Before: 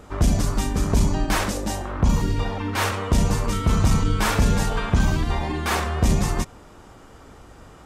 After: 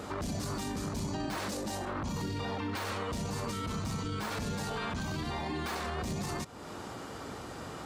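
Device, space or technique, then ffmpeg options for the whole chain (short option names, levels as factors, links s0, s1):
broadcast voice chain: -af "highpass=110,deesser=0.6,acompressor=threshold=0.0126:ratio=3,equalizer=f=4300:t=o:w=0.37:g=5.5,alimiter=level_in=2.66:limit=0.0631:level=0:latency=1:release=13,volume=0.376,volume=1.78"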